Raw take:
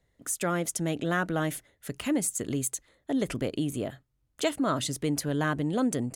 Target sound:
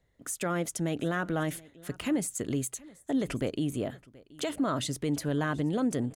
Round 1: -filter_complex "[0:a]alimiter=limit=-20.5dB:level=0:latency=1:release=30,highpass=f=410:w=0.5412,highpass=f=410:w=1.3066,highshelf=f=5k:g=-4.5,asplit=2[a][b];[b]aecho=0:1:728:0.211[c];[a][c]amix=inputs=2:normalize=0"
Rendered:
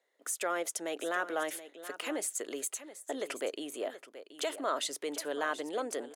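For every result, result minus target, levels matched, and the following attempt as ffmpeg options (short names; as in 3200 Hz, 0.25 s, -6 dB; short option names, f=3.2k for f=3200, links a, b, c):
echo-to-direct +9 dB; 500 Hz band +3.0 dB
-filter_complex "[0:a]alimiter=limit=-20.5dB:level=0:latency=1:release=30,highpass=f=410:w=0.5412,highpass=f=410:w=1.3066,highshelf=f=5k:g=-4.5,asplit=2[a][b];[b]aecho=0:1:728:0.075[c];[a][c]amix=inputs=2:normalize=0"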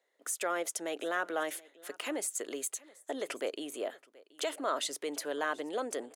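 500 Hz band +3.0 dB
-filter_complex "[0:a]alimiter=limit=-20.5dB:level=0:latency=1:release=30,highshelf=f=5k:g=-4.5,asplit=2[a][b];[b]aecho=0:1:728:0.075[c];[a][c]amix=inputs=2:normalize=0"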